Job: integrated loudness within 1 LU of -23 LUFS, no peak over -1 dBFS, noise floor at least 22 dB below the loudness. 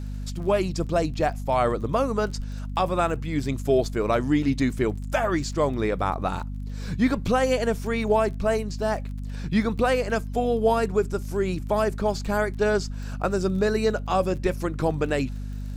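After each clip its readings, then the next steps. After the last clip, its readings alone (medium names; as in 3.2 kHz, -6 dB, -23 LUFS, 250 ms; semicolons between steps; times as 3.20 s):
tick rate 26 per s; hum 50 Hz; highest harmonic 250 Hz; hum level -30 dBFS; loudness -25.0 LUFS; peak level -10.5 dBFS; loudness target -23.0 LUFS
-> de-click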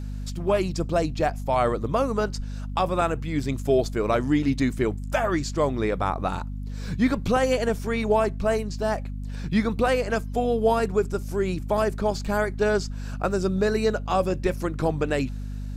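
tick rate 0.063 per s; hum 50 Hz; highest harmonic 250 Hz; hum level -30 dBFS
-> hum notches 50/100/150/200/250 Hz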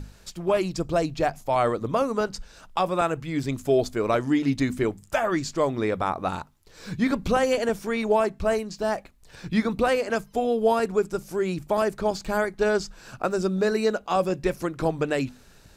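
hum not found; loudness -25.5 LUFS; peak level -11.0 dBFS; loudness target -23.0 LUFS
-> trim +2.5 dB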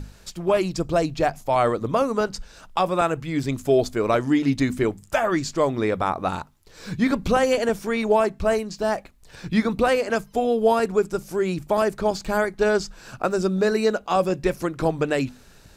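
loudness -23.0 LUFS; peak level -8.5 dBFS; noise floor -50 dBFS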